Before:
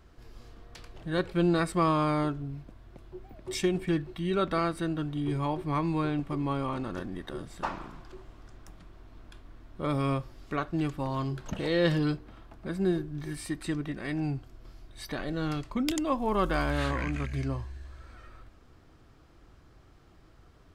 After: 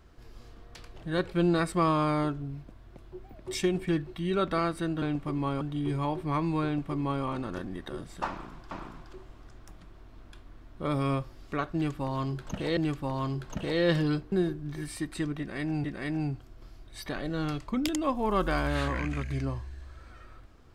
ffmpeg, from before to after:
-filter_complex "[0:a]asplit=7[a][b][c][d][e][f][g];[a]atrim=end=5.022[h];[b]atrim=start=6.058:end=6.652[i];[c]atrim=start=5.018:end=8.122[j];[d]atrim=start=7.698:end=11.762[k];[e]atrim=start=10.728:end=12.282[l];[f]atrim=start=12.808:end=14.332[m];[g]atrim=start=13.868[n];[h][i]acrossfade=d=0.004:c1=hsin:c2=hsin[o];[o][j]acrossfade=d=0.004:c1=hsin:c2=hsin[p];[p][k]acrossfade=d=0.004:c1=hsin:c2=hsin[q];[q][l]acrossfade=d=0.004:c1=hsin:c2=hsin[r];[r][m]acrossfade=d=0.004:c1=hsin:c2=hsin[s];[s][n]acrossfade=d=0.004:c1=hsin:c2=hsin"

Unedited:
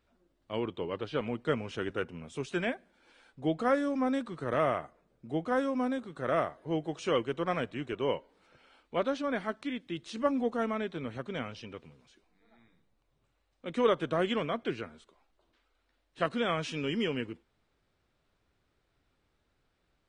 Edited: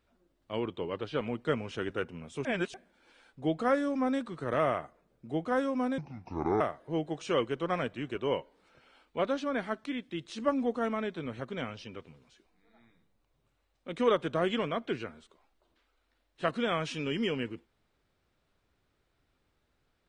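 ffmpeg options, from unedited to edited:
-filter_complex "[0:a]asplit=5[a][b][c][d][e];[a]atrim=end=2.452[f];[b]atrim=start=2.448:end=2.742,asetpts=PTS-STARTPTS,areverse[g];[c]atrim=start=2.738:end=5.984[h];[d]atrim=start=5.98:end=6.38,asetpts=PTS-STARTPTS,asetrate=28224,aresample=44100,atrim=end_sample=27562,asetpts=PTS-STARTPTS[i];[e]atrim=start=6.376[j];[f][g]acrossfade=d=0.004:c1=hsin:c2=hsin[k];[k][h]acrossfade=d=0.004:c1=hsin:c2=hsin[l];[l][i]acrossfade=d=0.004:c1=hsin:c2=hsin[m];[m][j]acrossfade=d=0.004:c1=hsin:c2=hsin"

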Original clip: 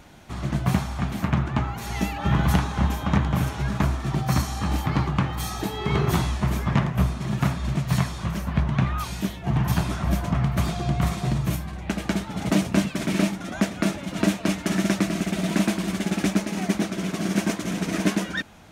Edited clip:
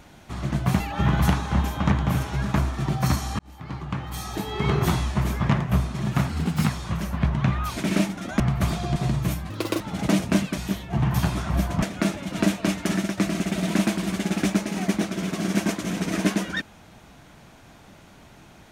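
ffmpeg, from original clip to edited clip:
-filter_complex "[0:a]asplit=13[a][b][c][d][e][f][g][h][i][j][k][l][m];[a]atrim=end=0.802[n];[b]atrim=start=2.058:end=4.65,asetpts=PTS-STARTPTS,afade=t=out:st=2.588:d=0.004:c=hsin[o];[c]atrim=start=4.65:end=7.554,asetpts=PTS-STARTPTS,afade=t=in:d=1.18[p];[d]atrim=start=7.55:end=8.02,asetpts=PTS-STARTPTS,asetrate=53361,aresample=44100[q];[e]atrim=start=8.016:end=9.112[r];[f]atrim=start=12.998:end=13.632[s];[g]atrim=start=10.358:end=10.922[t];[h]atrim=start=11.178:end=11.724[u];[i]atrim=start=11.72:end=12.23,asetpts=PTS-STARTPTS,asetrate=73647,aresample=44100[v];[j]atrim=start=12.226:end=13.002[w];[k]atrim=start=9.108:end=10.362[x];[l]atrim=start=13.628:end=14.98,asetpts=PTS-STARTPTS,afade=t=out:st=1.102:d=0.25:silence=0.316228[y];[m]atrim=start=14.98,asetpts=PTS-STARTPTS,afade=t=in:d=0.004:c=hsin:silence=0.316228[z];[o][p]concat=n=2:v=0:a=1[aa];[n][aa]acrossfade=d=0.004:c1=hsin:c2=hsin[ab];[ab][q]acrossfade=d=0.004:c1=hsin:c2=hsin[ac];[ac][r]acrossfade=d=0.004:c1=hsin:c2=hsin[ad];[ad][s]acrossfade=d=0.004:c1=hsin:c2=hsin[ae];[ae][t]acrossfade=d=0.004:c1=hsin:c2=hsin[af];[af][u]acrossfade=d=0.004:c1=hsin:c2=hsin[ag];[ag][v]acrossfade=d=0.004:c1=hsin:c2=hsin[ah];[ah][w]acrossfade=d=0.004:c1=hsin:c2=hsin[ai];[ai][x]acrossfade=d=0.004:c1=hsin:c2=hsin[aj];[y][z]concat=n=2:v=0:a=1[ak];[aj][ak]acrossfade=d=0.004:c1=hsin:c2=hsin"

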